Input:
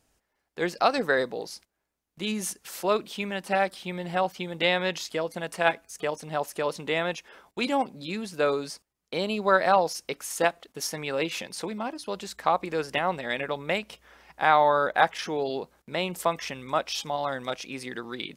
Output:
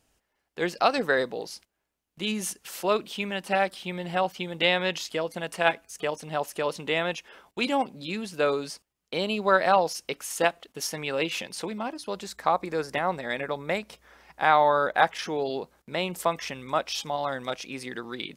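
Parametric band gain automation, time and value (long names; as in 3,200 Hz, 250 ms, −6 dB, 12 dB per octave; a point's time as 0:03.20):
parametric band 2,900 Hz 0.38 octaves
0:11.62 +4 dB
0:12.73 −8 dB
0:13.78 −8 dB
0:14.42 0 dB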